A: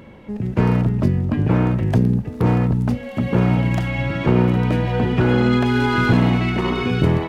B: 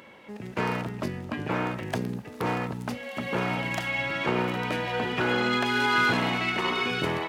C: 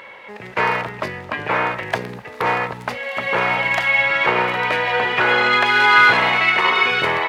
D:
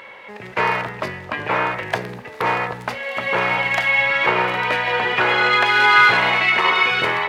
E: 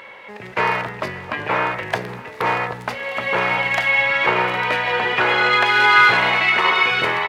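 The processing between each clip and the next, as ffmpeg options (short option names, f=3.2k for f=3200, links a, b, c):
-af "highpass=f=1.2k:p=1,volume=1.5dB"
-af "equalizer=f=250:t=o:w=1:g=-7,equalizer=f=500:t=o:w=1:g=7,equalizer=f=1k:t=o:w=1:g=8,equalizer=f=2k:t=o:w=1:g=11,equalizer=f=4k:t=o:w=1:g=5,volume=1dB"
-af "bandreject=f=81.77:t=h:w=4,bandreject=f=163.54:t=h:w=4,bandreject=f=245.31:t=h:w=4,bandreject=f=327.08:t=h:w=4,bandreject=f=408.85:t=h:w=4,bandreject=f=490.62:t=h:w=4,bandreject=f=572.39:t=h:w=4,bandreject=f=654.16:t=h:w=4,bandreject=f=735.93:t=h:w=4,bandreject=f=817.7:t=h:w=4,bandreject=f=899.47:t=h:w=4,bandreject=f=981.24:t=h:w=4,bandreject=f=1.06301k:t=h:w=4,bandreject=f=1.14478k:t=h:w=4,bandreject=f=1.22655k:t=h:w=4,bandreject=f=1.30832k:t=h:w=4,bandreject=f=1.39009k:t=h:w=4,bandreject=f=1.47186k:t=h:w=4,bandreject=f=1.55363k:t=h:w=4,bandreject=f=1.6354k:t=h:w=4,bandreject=f=1.71717k:t=h:w=4,bandreject=f=1.79894k:t=h:w=4,bandreject=f=1.88071k:t=h:w=4,bandreject=f=1.96248k:t=h:w=4,bandreject=f=2.04425k:t=h:w=4,bandreject=f=2.12602k:t=h:w=4,bandreject=f=2.20779k:t=h:w=4,bandreject=f=2.28956k:t=h:w=4"
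-af "aecho=1:1:587:0.106"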